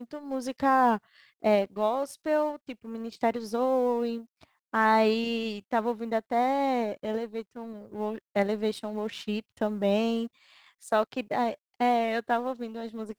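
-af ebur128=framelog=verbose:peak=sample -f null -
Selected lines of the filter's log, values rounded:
Integrated loudness:
  I:         -28.4 LUFS
  Threshold: -38.9 LUFS
Loudness range:
  LRA:         3.3 LU
  Threshold: -49.0 LUFS
  LRA low:   -30.9 LUFS
  LRA high:  -27.6 LUFS
Sample peak:
  Peak:      -11.6 dBFS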